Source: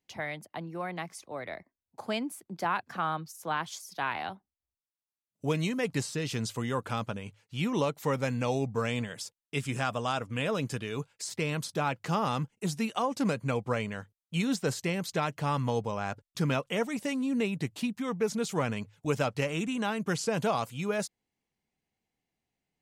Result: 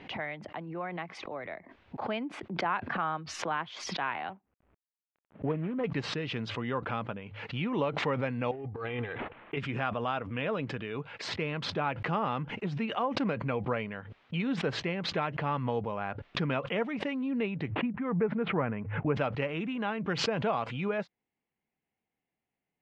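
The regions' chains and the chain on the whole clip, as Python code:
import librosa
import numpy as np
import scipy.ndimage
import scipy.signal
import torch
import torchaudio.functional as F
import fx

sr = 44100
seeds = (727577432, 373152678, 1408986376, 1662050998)

y = fx.chain(x, sr, fx.median_filter(points=25),
    fx.moving_average(points=8), at=(4.3, 5.84))
y = fx.chain(y, sr, fx.comb(ms=2.5, depth=0.74),
    fx.over_compress(threshold_db=-32.0, ratio=-0.5),
    fx.resample_linear(factor=8), at=(8.51, 9.57))
y = fx.chain(y, sr, fx.lowpass(hz=2100.0, slope=24),
    fx.low_shelf(hz=220.0, db=4.0), at=(17.7, 19.16))
y = scipy.signal.sosfilt(scipy.signal.butter(4, 2900.0, 'lowpass', fs=sr, output='sos'), y)
y = fx.low_shelf(y, sr, hz=96.0, db=-10.0)
y = fx.pre_swell(y, sr, db_per_s=51.0)
y = y * 10.0 ** (-1.0 / 20.0)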